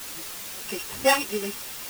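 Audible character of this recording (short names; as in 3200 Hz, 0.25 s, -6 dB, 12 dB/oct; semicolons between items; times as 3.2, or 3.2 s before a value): a buzz of ramps at a fixed pitch in blocks of 16 samples; random-step tremolo 4.4 Hz, depth 95%; a quantiser's noise floor 6-bit, dither triangular; a shimmering, thickened sound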